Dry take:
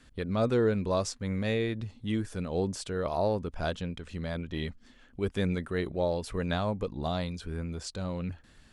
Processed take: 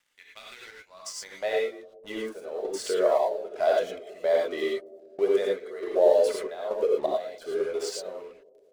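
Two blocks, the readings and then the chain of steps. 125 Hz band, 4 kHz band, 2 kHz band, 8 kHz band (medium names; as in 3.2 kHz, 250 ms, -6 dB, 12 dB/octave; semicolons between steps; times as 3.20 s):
under -25 dB, +1.0 dB, +1.0 dB, +4.0 dB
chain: de-hum 204.2 Hz, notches 35; reverb removal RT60 1.2 s; bass shelf 87 Hz -3.5 dB; in parallel at +2.5 dB: peak limiter -29 dBFS, peak gain reduction 11.5 dB; on the sum: compression 2.5:1, threshold -39 dBFS, peak gain reduction 12.5 dB; high-pass sweep 2.2 kHz -> 520 Hz, 0.62–1.69 s; small resonant body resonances 410/620/2000 Hz, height 13 dB, ringing for 50 ms; crossover distortion -49.5 dBFS; trance gate "..xx..xxx" 85 bpm -12 dB; bucket-brigade echo 200 ms, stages 1024, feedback 64%, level -21 dB; gated-style reverb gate 130 ms rising, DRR -2 dB; trim +3 dB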